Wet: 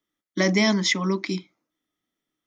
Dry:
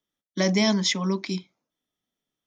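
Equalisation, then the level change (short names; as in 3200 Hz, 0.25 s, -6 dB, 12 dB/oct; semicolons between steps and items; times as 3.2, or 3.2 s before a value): thirty-one-band EQ 315 Hz +10 dB, 1250 Hz +6 dB, 2000 Hz +7 dB; 0.0 dB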